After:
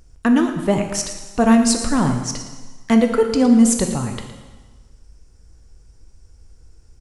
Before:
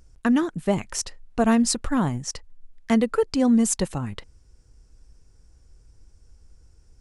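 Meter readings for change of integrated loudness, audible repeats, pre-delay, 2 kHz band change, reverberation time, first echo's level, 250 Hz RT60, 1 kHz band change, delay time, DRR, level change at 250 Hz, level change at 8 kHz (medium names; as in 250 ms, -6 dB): +6.0 dB, 1, 7 ms, +5.0 dB, 1.4 s, -13.0 dB, 1.3 s, +5.5 dB, 114 ms, 4.5 dB, +6.0 dB, +5.0 dB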